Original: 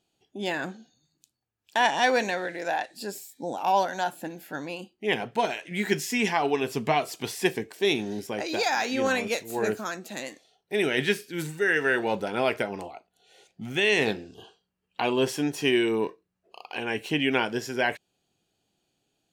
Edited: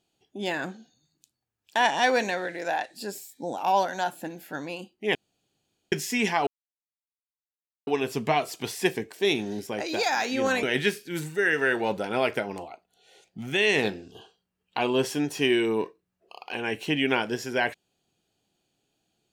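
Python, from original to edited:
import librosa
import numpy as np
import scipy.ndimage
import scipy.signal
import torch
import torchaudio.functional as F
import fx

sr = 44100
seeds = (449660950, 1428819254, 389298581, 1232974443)

y = fx.edit(x, sr, fx.room_tone_fill(start_s=5.15, length_s=0.77),
    fx.insert_silence(at_s=6.47, length_s=1.4),
    fx.cut(start_s=9.23, length_s=1.63), tone=tone)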